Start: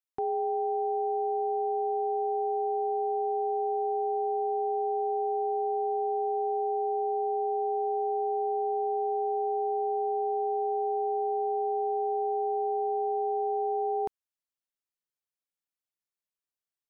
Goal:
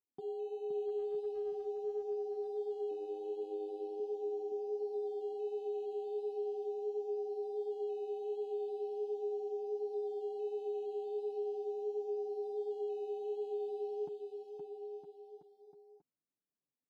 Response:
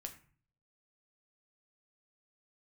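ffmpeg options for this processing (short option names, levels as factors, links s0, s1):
-filter_complex "[0:a]aecho=1:1:7:0.48,alimiter=level_in=1.41:limit=0.0631:level=0:latency=1:release=14,volume=0.708,acrusher=samples=10:mix=1:aa=0.000001:lfo=1:lforange=6:lforate=0.4,flanger=delay=2.1:depth=5.8:regen=4:speed=1.4:shape=sinusoidal,asettb=1/sr,asplit=3[s0][s1][s2];[s0]atrim=end=0.874[s3];[s1]atrim=start=0.87:end=1.63,asetpts=PTS-STARTPTS,afade=t=in:d=0.004:c=qsin,afade=t=out:st=0.756:d=0.004:c=qsin,asoftclip=type=hard:threshold=0.0316[s4];[s2]atrim=start=1.626[s5];[s3][s4]acrossfade=d=0.004:c1=hsin:c2=qsin[s6];[s6][s5]acrossfade=d=0.004:c1=qsin:c2=hsin,asettb=1/sr,asplit=3[s7][s8][s9];[s7]atrim=end=2.914[s10];[s8]atrim=start=2.91:end=4,asetpts=PTS-STARTPTS,afade=t=in:d=0.004:c=qsin,afade=t=out:st=1.086:d=0.004:c=qsin,tremolo=f=100:d=0.4[s11];[s9]atrim=start=3.996[s12];[s10][s11]acrossfade=d=0.004:c1=hsin:c2=qsin[s13];[s13][s12]acrossfade=d=0.004:c1=qsin:c2=hsin,bandpass=f=230:t=q:w=1.4:csg=0,aecho=1:1:520|962|1338|1657|1928:0.631|0.398|0.251|0.158|0.1,volume=1.12"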